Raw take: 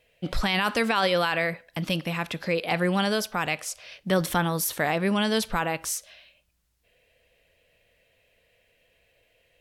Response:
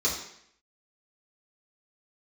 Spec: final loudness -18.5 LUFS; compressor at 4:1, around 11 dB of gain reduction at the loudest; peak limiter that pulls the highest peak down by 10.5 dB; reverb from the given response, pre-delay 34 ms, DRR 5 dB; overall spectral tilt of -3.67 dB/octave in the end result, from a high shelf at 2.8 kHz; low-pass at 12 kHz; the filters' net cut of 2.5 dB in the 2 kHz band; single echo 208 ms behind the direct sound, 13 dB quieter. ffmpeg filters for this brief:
-filter_complex "[0:a]lowpass=12000,equalizer=f=2000:t=o:g=-6.5,highshelf=f=2800:g=8,acompressor=threshold=0.0224:ratio=4,alimiter=level_in=1.78:limit=0.0631:level=0:latency=1,volume=0.562,aecho=1:1:208:0.224,asplit=2[s0][s1];[1:a]atrim=start_sample=2205,adelay=34[s2];[s1][s2]afir=irnorm=-1:irlink=0,volume=0.178[s3];[s0][s3]amix=inputs=2:normalize=0,volume=8.91"

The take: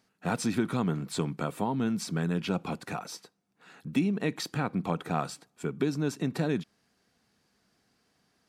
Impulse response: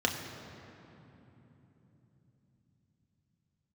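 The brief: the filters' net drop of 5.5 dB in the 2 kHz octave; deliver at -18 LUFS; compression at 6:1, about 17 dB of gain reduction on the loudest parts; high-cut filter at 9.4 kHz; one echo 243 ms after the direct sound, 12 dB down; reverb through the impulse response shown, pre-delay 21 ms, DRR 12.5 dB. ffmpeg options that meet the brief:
-filter_complex "[0:a]lowpass=9400,equalizer=f=2000:t=o:g=-8,acompressor=threshold=0.00794:ratio=6,aecho=1:1:243:0.251,asplit=2[s0][s1];[1:a]atrim=start_sample=2205,adelay=21[s2];[s1][s2]afir=irnorm=-1:irlink=0,volume=0.0794[s3];[s0][s3]amix=inputs=2:normalize=0,volume=23.7"

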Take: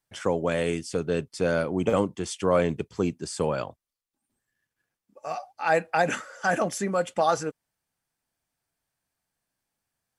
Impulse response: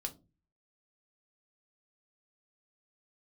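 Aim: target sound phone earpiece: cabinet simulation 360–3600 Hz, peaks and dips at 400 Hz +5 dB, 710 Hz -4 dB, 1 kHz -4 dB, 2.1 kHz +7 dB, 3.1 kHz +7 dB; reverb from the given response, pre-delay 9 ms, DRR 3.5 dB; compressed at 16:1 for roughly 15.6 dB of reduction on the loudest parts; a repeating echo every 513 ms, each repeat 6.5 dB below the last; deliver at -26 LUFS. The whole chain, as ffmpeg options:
-filter_complex "[0:a]acompressor=threshold=0.0224:ratio=16,aecho=1:1:513|1026|1539|2052|2565|3078:0.473|0.222|0.105|0.0491|0.0231|0.0109,asplit=2[s0][s1];[1:a]atrim=start_sample=2205,adelay=9[s2];[s1][s2]afir=irnorm=-1:irlink=0,volume=0.75[s3];[s0][s3]amix=inputs=2:normalize=0,highpass=360,equalizer=f=400:t=q:w=4:g=5,equalizer=f=710:t=q:w=4:g=-4,equalizer=f=1000:t=q:w=4:g=-4,equalizer=f=2100:t=q:w=4:g=7,equalizer=f=3100:t=q:w=4:g=7,lowpass=f=3600:w=0.5412,lowpass=f=3600:w=1.3066,volume=3.98"

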